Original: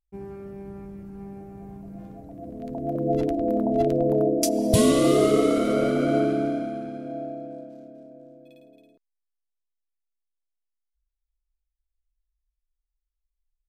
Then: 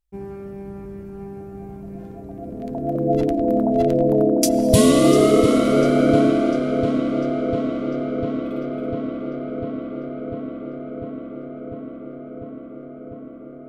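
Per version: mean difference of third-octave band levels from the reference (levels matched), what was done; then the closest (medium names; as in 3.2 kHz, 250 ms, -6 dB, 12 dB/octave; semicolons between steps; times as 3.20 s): 4.0 dB: filtered feedback delay 698 ms, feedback 82%, low-pass 4.3 kHz, level -9 dB; trim +4.5 dB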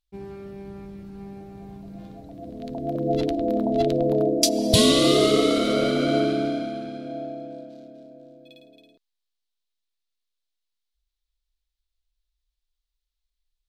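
2.0 dB: peaking EQ 3.9 kHz +14 dB 1.1 oct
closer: second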